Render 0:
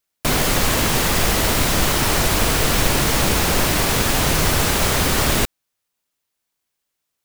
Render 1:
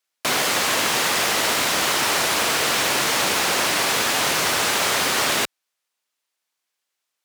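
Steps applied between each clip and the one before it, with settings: frequency weighting A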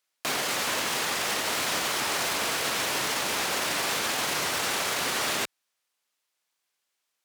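peak limiter -19 dBFS, peak gain reduction 10.5 dB; vibrato with a chosen wave saw up 3 Hz, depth 100 cents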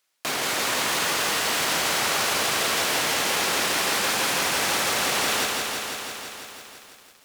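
peak limiter -24.5 dBFS, peak gain reduction 6 dB; bit-crushed delay 166 ms, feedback 80%, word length 10-bit, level -3.5 dB; trim +6.5 dB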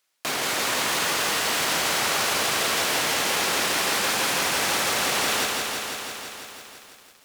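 no audible change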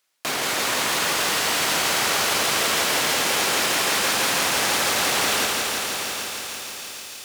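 feedback echo behind a high-pass 305 ms, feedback 83%, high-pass 3.2 kHz, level -11.5 dB; bit-crushed delay 774 ms, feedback 35%, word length 7-bit, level -10 dB; trim +1.5 dB

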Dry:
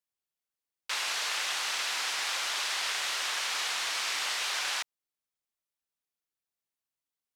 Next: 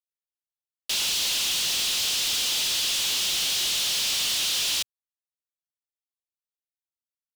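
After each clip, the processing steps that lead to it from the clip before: elliptic band-stop 110–3000 Hz; waveshaping leveller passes 5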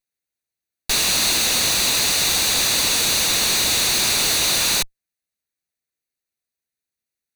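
comb filter that takes the minimum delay 0.48 ms; trim +8.5 dB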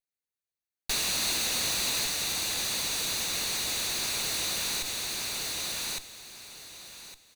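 feedback delay 1159 ms, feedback 23%, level -6.5 dB; peak limiter -13.5 dBFS, peak gain reduction 5.5 dB; trim -8.5 dB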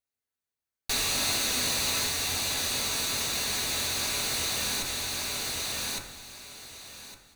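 reverberation RT60 0.80 s, pre-delay 6 ms, DRR 1 dB

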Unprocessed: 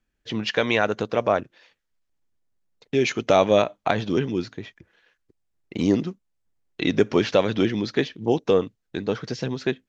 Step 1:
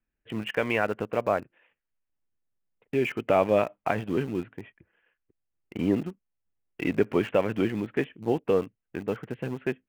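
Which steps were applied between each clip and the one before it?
steep low-pass 3 kHz 72 dB/octave; in parallel at -7.5 dB: small samples zeroed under -27 dBFS; on the sum: trim -7.5 dB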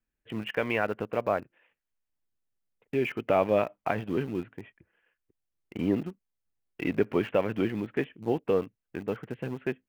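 dynamic bell 7.7 kHz, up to -6 dB, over -58 dBFS, Q 1.5; trim -2 dB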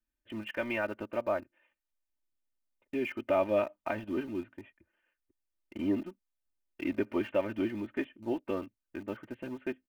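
comb 3.3 ms, depth 89%; trim -7 dB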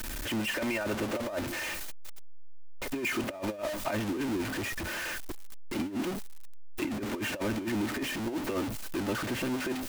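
jump at every zero crossing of -30.5 dBFS; compressor with a negative ratio -30 dBFS, ratio -0.5

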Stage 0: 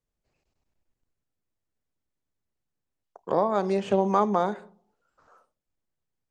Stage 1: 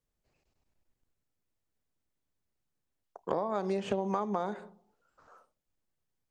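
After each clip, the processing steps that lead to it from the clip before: compression 12:1, threshold -27 dBFS, peak gain reduction 11.5 dB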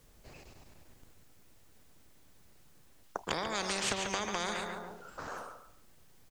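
feedback delay 142 ms, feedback 25%, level -12.5 dB; spectrum-flattening compressor 4:1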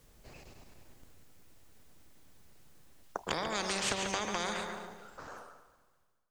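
fade out at the end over 1.87 s; echo whose repeats swap between lows and highs 109 ms, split 840 Hz, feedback 59%, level -10 dB

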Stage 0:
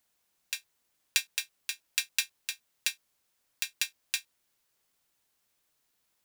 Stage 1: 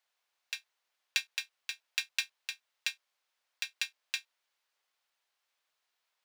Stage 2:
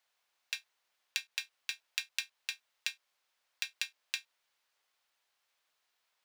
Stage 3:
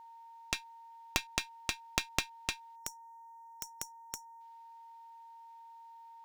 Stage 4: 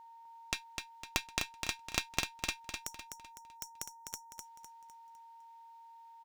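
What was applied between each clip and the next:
three-band isolator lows -22 dB, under 520 Hz, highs -13 dB, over 5.3 kHz; trim -1 dB
compression 6:1, threshold -34 dBFS, peak gain reduction 9.5 dB; trim +2.5 dB
spectral selection erased 2.76–4.41 s, 760–5500 Hz; whistle 920 Hz -52 dBFS; Chebyshev shaper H 4 -7 dB, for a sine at -11 dBFS; trim +1.5 dB
feedback delay 253 ms, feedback 40%, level -5.5 dB; trim -1.5 dB

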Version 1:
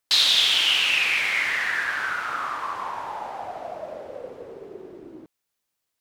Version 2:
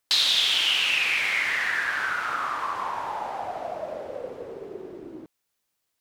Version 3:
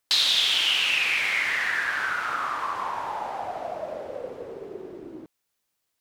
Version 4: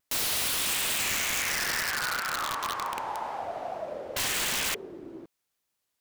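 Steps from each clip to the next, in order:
compression 1.5:1, threshold -29 dBFS, peak gain reduction 5.5 dB; trim +2 dB
no audible change
wow and flutter 87 cents; painted sound noise, 4.16–4.75 s, 1.5–3.5 kHz -25 dBFS; integer overflow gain 21 dB; trim -2.5 dB

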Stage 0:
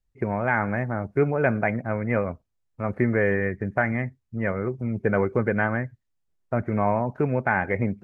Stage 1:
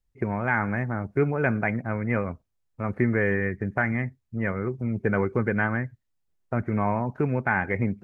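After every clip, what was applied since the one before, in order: dynamic bell 600 Hz, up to -6 dB, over -37 dBFS, Q 1.9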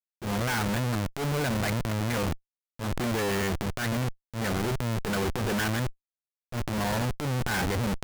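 Schmitt trigger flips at -36 dBFS; transient shaper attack -11 dB, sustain +6 dB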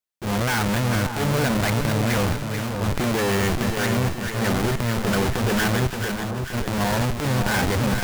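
two-band feedback delay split 1.2 kHz, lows 573 ms, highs 439 ms, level -5.5 dB; trim +5.5 dB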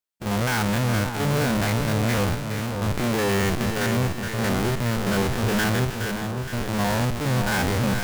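spectrogram pixelated in time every 50 ms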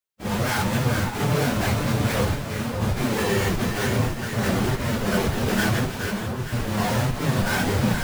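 phase randomisation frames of 50 ms

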